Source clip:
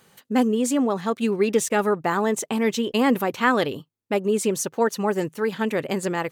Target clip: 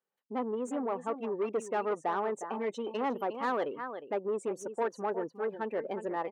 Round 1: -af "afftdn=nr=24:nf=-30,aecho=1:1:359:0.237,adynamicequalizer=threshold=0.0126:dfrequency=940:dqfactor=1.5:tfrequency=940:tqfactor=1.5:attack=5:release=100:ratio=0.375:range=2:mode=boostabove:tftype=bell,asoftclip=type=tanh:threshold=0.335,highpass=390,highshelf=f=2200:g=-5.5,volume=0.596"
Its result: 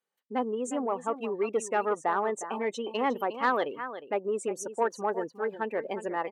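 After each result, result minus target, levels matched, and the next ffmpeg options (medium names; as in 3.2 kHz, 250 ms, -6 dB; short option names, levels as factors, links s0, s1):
saturation: distortion -10 dB; 4 kHz band +3.5 dB
-af "afftdn=nr=24:nf=-30,aecho=1:1:359:0.237,adynamicequalizer=threshold=0.0126:dfrequency=940:dqfactor=1.5:tfrequency=940:tqfactor=1.5:attack=5:release=100:ratio=0.375:range=2:mode=boostabove:tftype=bell,asoftclip=type=tanh:threshold=0.133,highpass=390,highshelf=f=2200:g=-5.5,volume=0.596"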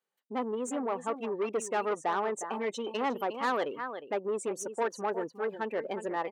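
4 kHz band +5.5 dB
-af "afftdn=nr=24:nf=-30,aecho=1:1:359:0.237,adynamicequalizer=threshold=0.0126:dfrequency=940:dqfactor=1.5:tfrequency=940:tqfactor=1.5:attack=5:release=100:ratio=0.375:range=2:mode=boostabove:tftype=bell,asoftclip=type=tanh:threshold=0.133,highpass=390,highshelf=f=2200:g=-15.5,volume=0.596"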